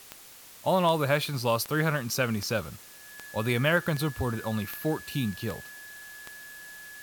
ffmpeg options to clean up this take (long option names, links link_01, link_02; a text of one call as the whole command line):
ffmpeg -i in.wav -af "adeclick=threshold=4,bandreject=frequency=1700:width=30,afwtdn=0.0035" out.wav